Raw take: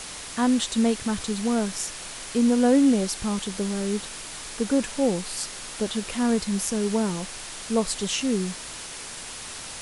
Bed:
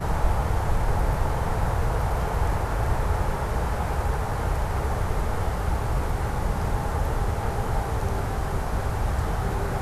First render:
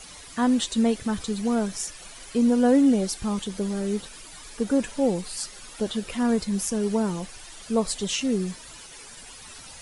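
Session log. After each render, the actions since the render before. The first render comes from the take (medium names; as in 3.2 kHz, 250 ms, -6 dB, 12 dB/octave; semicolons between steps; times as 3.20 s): noise reduction 12 dB, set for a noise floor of -38 dBFS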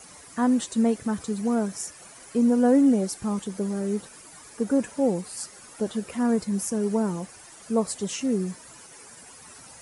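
high-pass 97 Hz 12 dB/octave; peaking EQ 3.5 kHz -10.5 dB 1.2 oct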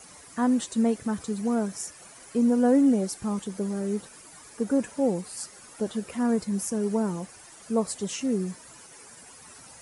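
trim -1.5 dB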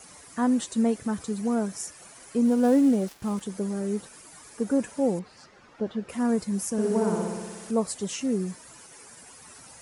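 2.45–3.41 s: dead-time distortion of 0.07 ms; 5.19–6.09 s: distance through air 230 m; 6.72–7.71 s: flutter echo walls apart 10.4 m, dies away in 1.4 s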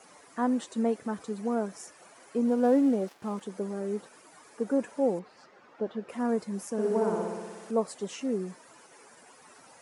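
Bessel high-pass 570 Hz, order 2; tilt EQ -3.5 dB/octave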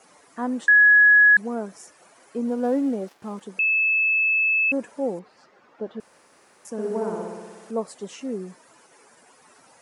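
0.68–1.37 s: bleep 1.68 kHz -10.5 dBFS; 3.59–4.72 s: bleep 2.61 kHz -17.5 dBFS; 6.00–6.65 s: room tone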